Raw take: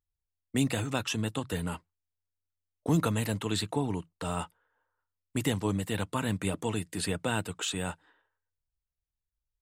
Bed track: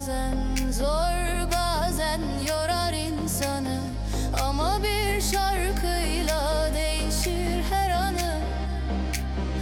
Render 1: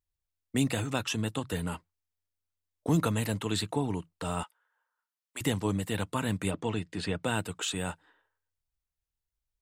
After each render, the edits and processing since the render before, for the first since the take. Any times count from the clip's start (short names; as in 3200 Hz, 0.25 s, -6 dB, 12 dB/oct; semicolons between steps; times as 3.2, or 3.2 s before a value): 4.43–5.41 HPF 880 Hz; 6.51–7.23 LPF 4600 Hz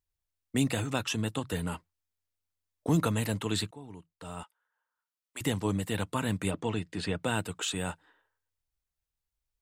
3.71–5.73 fade in, from -19.5 dB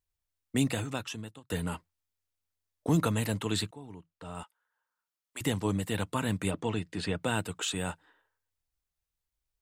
0.63–1.5 fade out; 3.94–4.35 LPF 3300 Hz 6 dB/oct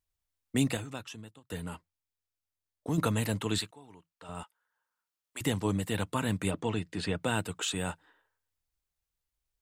0.77–2.98 gain -5.5 dB; 3.58–4.29 low shelf 420 Hz -11.5 dB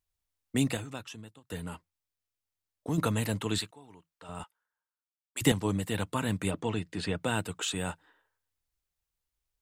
4.39–5.52 three-band expander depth 70%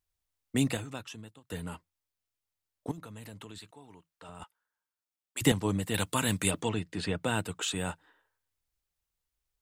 2.91–4.42 compressor 10:1, threshold -42 dBFS; 5.94–6.69 high shelf 2600 Hz +11.5 dB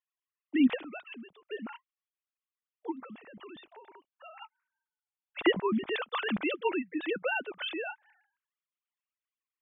sine-wave speech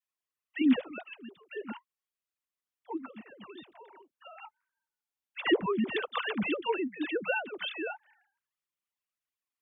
wow and flutter 24 cents; dispersion lows, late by 69 ms, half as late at 600 Hz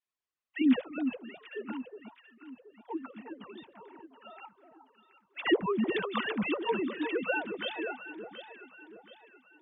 air absorption 72 m; echo with dull and thin repeats by turns 0.363 s, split 1100 Hz, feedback 63%, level -8 dB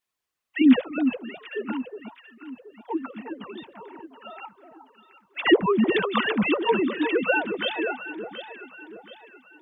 gain +8.5 dB